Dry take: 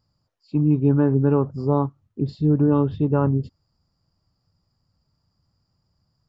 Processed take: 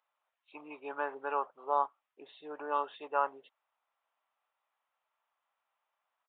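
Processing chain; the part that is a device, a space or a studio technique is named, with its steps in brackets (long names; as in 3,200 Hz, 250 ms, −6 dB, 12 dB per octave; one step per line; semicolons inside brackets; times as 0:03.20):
musical greeting card (downsampling to 8,000 Hz; high-pass filter 720 Hz 24 dB per octave; parametric band 2,400 Hz +4.5 dB 0.57 octaves)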